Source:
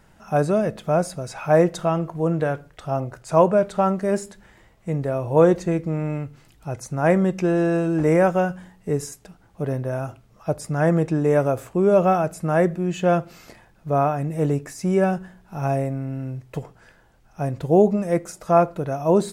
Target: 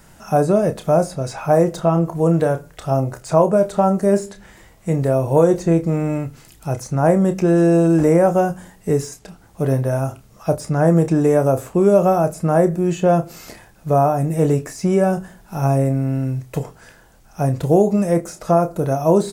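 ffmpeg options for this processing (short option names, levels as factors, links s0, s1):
-filter_complex "[0:a]acrossover=split=1200|5400[s0][s1][s2];[s0]acompressor=threshold=0.141:ratio=4[s3];[s1]acompressor=threshold=0.00501:ratio=4[s4];[s2]acompressor=threshold=0.00178:ratio=4[s5];[s3][s4][s5]amix=inputs=3:normalize=0,acrossover=split=5500[s6][s7];[s7]aeval=exprs='0.0158*sin(PI/2*1.78*val(0)/0.0158)':c=same[s8];[s6][s8]amix=inputs=2:normalize=0,asplit=2[s9][s10];[s10]adelay=30,volume=0.335[s11];[s9][s11]amix=inputs=2:normalize=0,volume=2"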